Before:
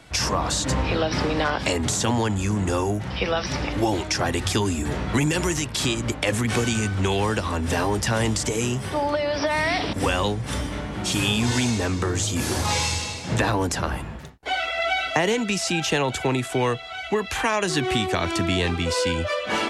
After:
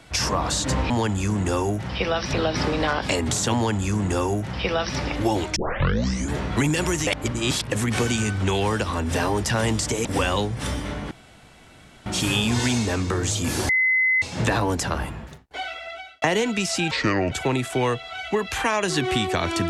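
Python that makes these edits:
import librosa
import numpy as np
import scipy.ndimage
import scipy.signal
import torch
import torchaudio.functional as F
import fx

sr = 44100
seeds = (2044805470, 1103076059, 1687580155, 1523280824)

y = fx.edit(x, sr, fx.duplicate(start_s=2.11, length_s=1.43, to_s=0.9),
    fx.tape_start(start_s=4.13, length_s=0.76),
    fx.reverse_span(start_s=5.64, length_s=0.65),
    fx.cut(start_s=8.62, length_s=1.3),
    fx.insert_room_tone(at_s=10.98, length_s=0.95),
    fx.bleep(start_s=12.61, length_s=0.53, hz=2040.0, db=-16.5),
    fx.fade_out_span(start_s=13.98, length_s=1.16),
    fx.speed_span(start_s=15.83, length_s=0.28, speed=0.69), tone=tone)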